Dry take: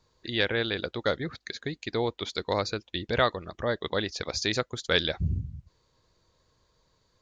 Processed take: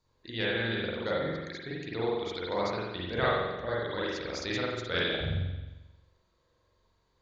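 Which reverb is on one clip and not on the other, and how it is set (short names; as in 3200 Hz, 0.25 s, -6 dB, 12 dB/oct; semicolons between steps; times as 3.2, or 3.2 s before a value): spring tank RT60 1.1 s, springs 44 ms, chirp 45 ms, DRR -6.5 dB; gain -9.5 dB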